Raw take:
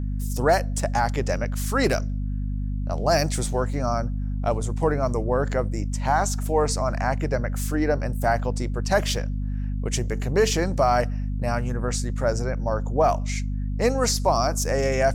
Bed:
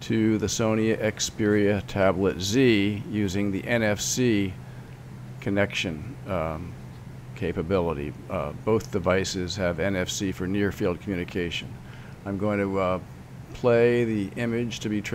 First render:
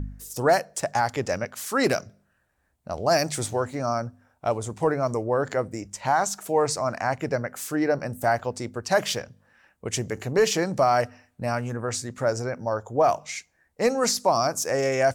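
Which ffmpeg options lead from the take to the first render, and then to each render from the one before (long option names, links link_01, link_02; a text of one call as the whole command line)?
ffmpeg -i in.wav -af "bandreject=frequency=50:width_type=h:width=4,bandreject=frequency=100:width_type=h:width=4,bandreject=frequency=150:width_type=h:width=4,bandreject=frequency=200:width_type=h:width=4,bandreject=frequency=250:width_type=h:width=4" out.wav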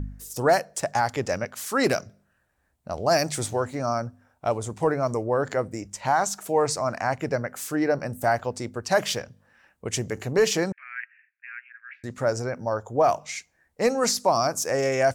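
ffmpeg -i in.wav -filter_complex "[0:a]asettb=1/sr,asplit=3[link_01][link_02][link_03];[link_01]atrim=end=10.724[link_04];[link_02]atrim=start=10.72:end=12.04,asetpts=PTS-STARTPTS,afade=type=in:duration=0.004:curve=qsin,afade=type=out:start_time=1.316:duration=0.004:curve=qsin,asuperpass=centerf=2000:order=8:qfactor=1.9[link_05];[link_03]atrim=start=12.036[link_06];[link_04][link_05]acrossfade=duration=0.004:curve1=hsin:curve2=qsin[link_07];[link_07][link_06]acrossfade=duration=0.004:curve1=qsin:curve2=hsin" out.wav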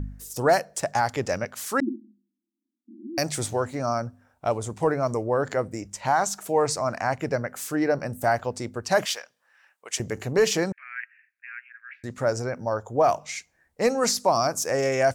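ffmpeg -i in.wav -filter_complex "[0:a]asettb=1/sr,asplit=3[link_01][link_02][link_03];[link_01]atrim=end=1.804[link_04];[link_02]atrim=start=1.8:end=3.18,asetpts=PTS-STARTPTS,afade=type=in:duration=0.004:curve=qsin,afade=type=out:start_time=1.376:duration=0.004:curve=qsin,asuperpass=centerf=270:order=20:qfactor=1.8[link_05];[link_03]atrim=start=3.176[link_06];[link_04][link_05]acrossfade=duration=0.004:curve1=hsin:curve2=qsin[link_07];[link_07][link_06]acrossfade=duration=0.004:curve1=qsin:curve2=hsin,asettb=1/sr,asplit=3[link_08][link_09][link_10];[link_08]atrim=end=9.054[link_11];[link_09]atrim=start=9.05:end=10,asetpts=PTS-STARTPTS,afade=type=in:duration=0.004:curve=qsin,afade=type=out:start_time=0.946:duration=0.004:curve=qsin,highpass=930[link_12];[link_10]atrim=start=9.996[link_13];[link_11][link_12]acrossfade=duration=0.004:curve1=hsin:curve2=qsin[link_14];[link_14][link_13]acrossfade=duration=0.004:curve1=qsin:curve2=hsin" out.wav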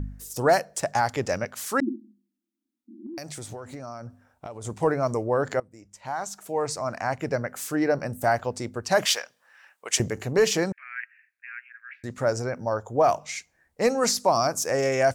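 ffmpeg -i in.wav -filter_complex "[0:a]asettb=1/sr,asplit=3[link_01][link_02][link_03];[link_01]atrim=end=3.064[link_04];[link_02]atrim=start=3.06:end=4.65,asetpts=PTS-STARTPTS,afade=type=in:duration=0.004:curve=qsin,afade=type=out:start_time=1.586:duration=0.004:curve=qsin,acompressor=threshold=-34dB:ratio=8:attack=3.2:release=140:knee=1:detection=peak[link_05];[link_03]atrim=start=4.646[link_06];[link_04][link_05]acrossfade=duration=0.004:curve1=hsin:curve2=qsin[link_07];[link_07][link_06]acrossfade=duration=0.004:curve1=qsin:curve2=hsin,asettb=1/sr,asplit=3[link_08][link_09][link_10];[link_08]atrim=end=9.054[link_11];[link_09]atrim=start=9.05:end=10.09,asetpts=PTS-STARTPTS,afade=type=in:duration=0.004:curve=qsin,afade=type=out:start_time=1.036:duration=0.004:curve=qsin,acontrast=39[link_12];[link_10]atrim=start=10.086[link_13];[link_11][link_12]acrossfade=duration=0.004:curve1=hsin:curve2=qsin[link_14];[link_14][link_13]acrossfade=duration=0.004:curve1=qsin:curve2=hsin,asplit=2[link_15][link_16];[link_15]atrim=end=5.6,asetpts=PTS-STARTPTS,afade=type=out:start_time=5.596:duration=0.004:curve=hsin:silence=0.0841395[link_17];[link_16]atrim=start=5.6,asetpts=PTS-STARTPTS,afade=type=in:duration=1.89:silence=0.0841395[link_18];[link_17][link_18]concat=n=2:v=0:a=1" out.wav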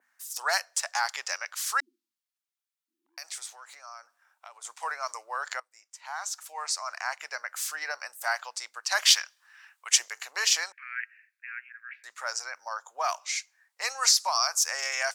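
ffmpeg -i in.wav -af "adynamicequalizer=threshold=0.00631:dfrequency=4900:dqfactor=0.97:tfrequency=4900:tqfactor=0.97:attack=5:release=100:ratio=0.375:range=3:mode=boostabove:tftype=bell,highpass=frequency=1000:width=0.5412,highpass=frequency=1000:width=1.3066" out.wav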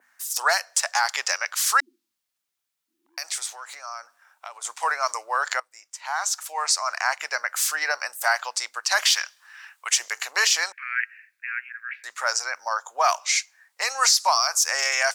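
ffmpeg -i in.wav -filter_complex "[0:a]asplit=2[link_01][link_02];[link_02]acontrast=88,volume=-2dB[link_03];[link_01][link_03]amix=inputs=2:normalize=0,alimiter=limit=-9dB:level=0:latency=1:release=142" out.wav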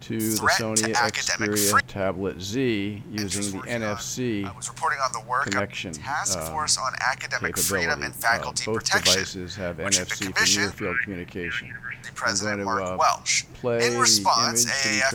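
ffmpeg -i in.wav -i bed.wav -filter_complex "[1:a]volume=-4.5dB[link_01];[0:a][link_01]amix=inputs=2:normalize=0" out.wav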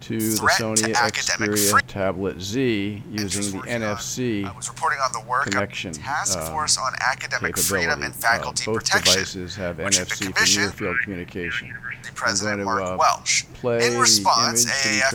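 ffmpeg -i in.wav -af "volume=2.5dB" out.wav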